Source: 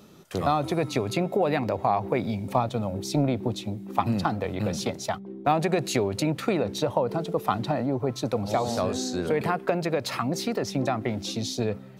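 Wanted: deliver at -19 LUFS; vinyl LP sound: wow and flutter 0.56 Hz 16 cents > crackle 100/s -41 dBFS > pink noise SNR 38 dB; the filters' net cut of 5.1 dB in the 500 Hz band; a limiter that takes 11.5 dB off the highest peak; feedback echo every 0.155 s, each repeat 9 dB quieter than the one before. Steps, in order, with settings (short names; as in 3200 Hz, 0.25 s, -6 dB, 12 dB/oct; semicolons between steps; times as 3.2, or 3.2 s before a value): bell 500 Hz -6.5 dB; limiter -21.5 dBFS; feedback echo 0.155 s, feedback 35%, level -9 dB; wow and flutter 0.56 Hz 16 cents; crackle 100/s -41 dBFS; pink noise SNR 38 dB; gain +12.5 dB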